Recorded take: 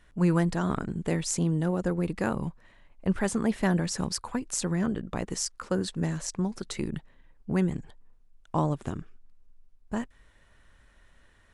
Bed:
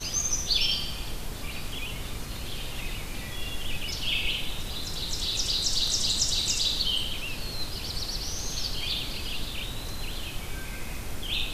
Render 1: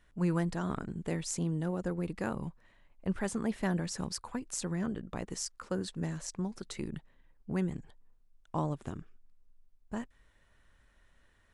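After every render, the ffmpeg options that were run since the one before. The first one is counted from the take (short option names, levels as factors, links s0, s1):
-af "volume=0.473"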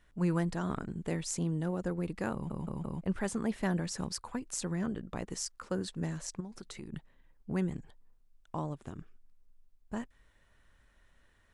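-filter_complex "[0:a]asettb=1/sr,asplit=3[s0][s1][s2];[s0]atrim=end=6.404[s3];[s1]atrim=start=6.4:end=6.93,asetpts=PTS-STARTPTS,afade=t=in:d=0.004:c=qsin,afade=t=out:st=0.526:d=0.004:c=qsin,acompressor=threshold=0.00794:ratio=3:attack=3.2:release=140:knee=1:detection=peak[s4];[s2]atrim=start=6.926[s5];[s3][s4]acrossfade=d=0.004:c1=hsin:c2=qsin[s6];[s6][s5]acrossfade=d=0.004:c1=qsin:c2=hsin,asplit=7[s7][s8][s9][s10][s11][s12][s13];[s7]atrim=end=2.502[s14];[s8]atrim=start=2.328:end=2.502[s15];[s9]atrim=start=2.328:end=2.502[s16];[s10]atrim=start=2.328:end=2.502[s17];[s11]atrim=start=3.008:end=8.552[s18];[s12]atrim=start=8.548:end=8.982,asetpts=PTS-STARTPTS,volume=0.631[s19];[s13]atrim=start=8.978[s20];[s14][s15]acrossfade=d=0.004:c1=hsin:c2=hsin[s21];[s21][s16]acrossfade=d=0.004:c1=hsin:c2=hsin[s22];[s22][s17]acrossfade=d=0.004:c1=hsin:c2=hsin[s23];[s23][s18]acrossfade=d=0.004:c1=hsin:c2=hsin[s24];[s24][s19]acrossfade=d=0.004:c1=hsin:c2=hsin[s25];[s25][s20]acrossfade=d=0.004:c1=hsin:c2=hsin"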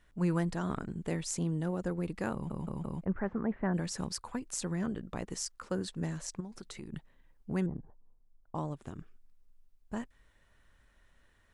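-filter_complex "[0:a]asplit=3[s0][s1][s2];[s0]afade=t=out:st=3.04:d=0.02[s3];[s1]lowpass=f=1800:w=0.5412,lowpass=f=1800:w=1.3066,afade=t=in:st=3.04:d=0.02,afade=t=out:st=3.73:d=0.02[s4];[s2]afade=t=in:st=3.73:d=0.02[s5];[s3][s4][s5]amix=inputs=3:normalize=0,asettb=1/sr,asplit=3[s6][s7][s8];[s6]atrim=end=7.664[s9];[s7]atrim=start=7.66:end=8.55,asetpts=PTS-STARTPTS,afade=t=in:d=0.004:c=qsin,afade=t=out:st=0.886:d=0.004:c=qsin,lowpass=f=1100:w=0.5412,lowpass=f=1100:w=1.3066[s10];[s8]atrim=start=8.546[s11];[s9][s10]acrossfade=d=0.004:c1=hsin:c2=qsin[s12];[s12][s11]acrossfade=d=0.004:c1=qsin:c2=hsin"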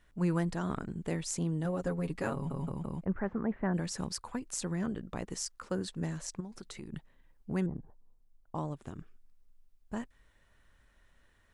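-filter_complex "[0:a]asettb=1/sr,asplit=3[s0][s1][s2];[s0]atrim=end=1.644[s3];[s1]atrim=start=1.64:end=2.72,asetpts=PTS-STARTPTS,afade=t=in:d=0.004:c=qsin,afade=t=out:st=1.076:d=0.004:c=qsin,aecho=1:1:7.3:0.73,atrim=end_sample=47628[s4];[s2]atrim=start=2.716[s5];[s3][s4]acrossfade=d=0.004:c1=hsin:c2=qsin[s6];[s6][s5]acrossfade=d=0.004:c1=qsin:c2=hsin"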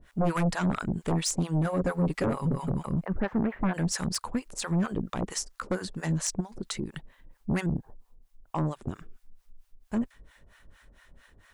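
-filter_complex "[0:a]acrossover=split=660[s0][s1];[s0]aeval=exprs='val(0)*(1-1/2+1/2*cos(2*PI*4.4*n/s))':c=same[s2];[s1]aeval=exprs='val(0)*(1-1/2-1/2*cos(2*PI*4.4*n/s))':c=same[s3];[s2][s3]amix=inputs=2:normalize=0,aeval=exprs='0.0891*sin(PI/2*3.16*val(0)/0.0891)':c=same"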